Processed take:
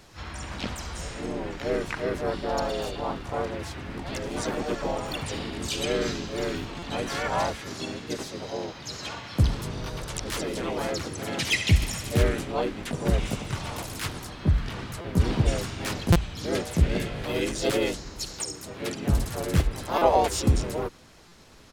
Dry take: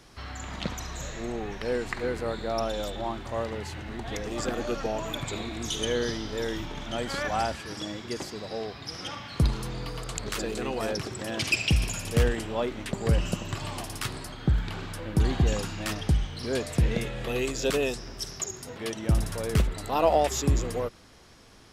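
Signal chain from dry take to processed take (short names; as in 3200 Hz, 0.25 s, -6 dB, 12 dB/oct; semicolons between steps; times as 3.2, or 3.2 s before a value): harmoniser -4 st -1 dB, +4 st -2 dB; stuck buffer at 6.79/15.01/16.12/19.98/21.28, samples 256, times 5; gain -2.5 dB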